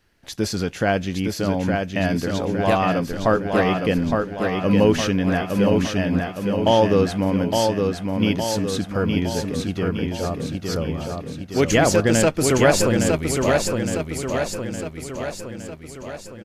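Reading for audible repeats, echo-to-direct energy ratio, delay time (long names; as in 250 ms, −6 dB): 6, −2.5 dB, 863 ms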